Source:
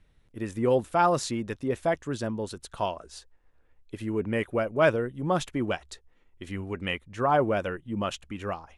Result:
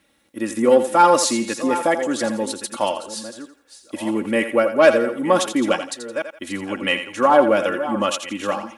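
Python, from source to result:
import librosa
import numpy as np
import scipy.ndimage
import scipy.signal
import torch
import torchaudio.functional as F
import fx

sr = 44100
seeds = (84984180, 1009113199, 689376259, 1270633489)

p1 = fx.reverse_delay(x, sr, ms=691, wet_db=-13)
p2 = fx.high_shelf(p1, sr, hz=8100.0, db=11.0)
p3 = fx.fold_sine(p2, sr, drive_db=3, ceiling_db=-10.0)
p4 = p2 + F.gain(torch.from_numpy(p3), -3.5).numpy()
p5 = scipy.signal.sosfilt(scipy.signal.butter(2, 220.0, 'highpass', fs=sr, output='sos'), p4)
p6 = p5 + 0.69 * np.pad(p5, (int(3.6 * sr / 1000.0), 0))[:len(p5)]
y = p6 + fx.echo_thinned(p6, sr, ms=84, feedback_pct=31, hz=360.0, wet_db=-9.0, dry=0)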